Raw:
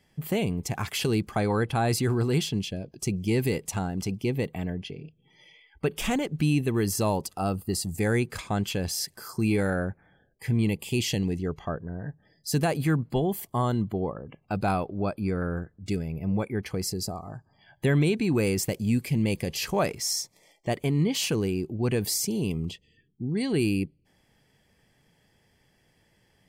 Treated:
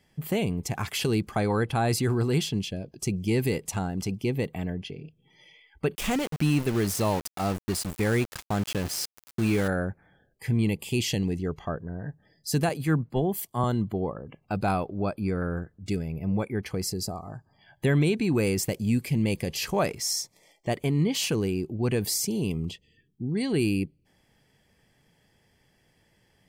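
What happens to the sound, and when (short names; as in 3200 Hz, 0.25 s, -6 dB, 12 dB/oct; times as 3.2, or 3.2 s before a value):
5.95–9.68 sample gate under -31.5 dBFS
12.69–13.64 three-band expander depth 100%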